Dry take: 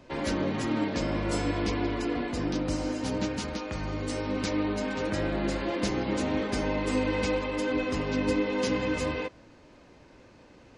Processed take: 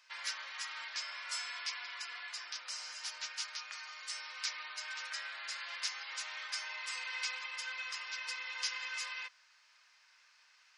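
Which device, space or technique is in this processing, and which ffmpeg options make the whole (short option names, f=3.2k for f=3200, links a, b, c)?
headphones lying on a table: -af "highpass=f=1.3k:w=0.5412,highpass=f=1.3k:w=1.3066,equalizer=f=5.2k:t=o:w=0.43:g=7,volume=-3.5dB"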